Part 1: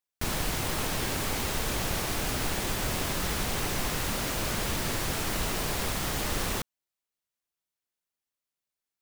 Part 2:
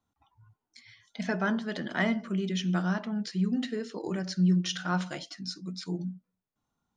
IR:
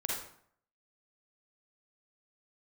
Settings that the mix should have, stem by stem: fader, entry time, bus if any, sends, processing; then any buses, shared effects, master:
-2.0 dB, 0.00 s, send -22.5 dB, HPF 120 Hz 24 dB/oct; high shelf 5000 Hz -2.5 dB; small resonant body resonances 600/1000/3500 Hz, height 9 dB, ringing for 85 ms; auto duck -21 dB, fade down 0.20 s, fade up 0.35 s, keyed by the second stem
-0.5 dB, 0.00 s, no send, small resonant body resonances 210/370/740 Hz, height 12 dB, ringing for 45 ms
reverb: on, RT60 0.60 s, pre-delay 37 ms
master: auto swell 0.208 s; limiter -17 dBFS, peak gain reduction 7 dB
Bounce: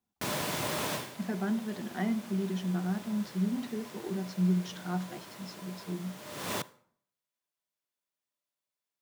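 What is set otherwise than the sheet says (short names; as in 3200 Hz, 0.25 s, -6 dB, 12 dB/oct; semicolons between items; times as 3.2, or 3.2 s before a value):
stem 2 -0.5 dB -> -12.0 dB; master: missing auto swell 0.208 s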